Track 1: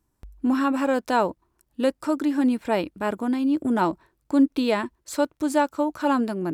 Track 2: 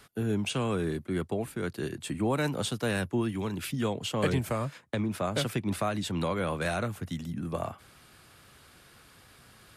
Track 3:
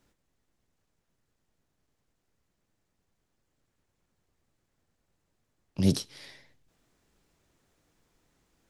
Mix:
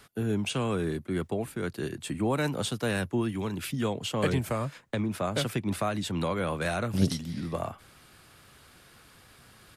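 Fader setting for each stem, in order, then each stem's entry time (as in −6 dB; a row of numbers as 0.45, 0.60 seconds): muted, +0.5 dB, −2.0 dB; muted, 0.00 s, 1.15 s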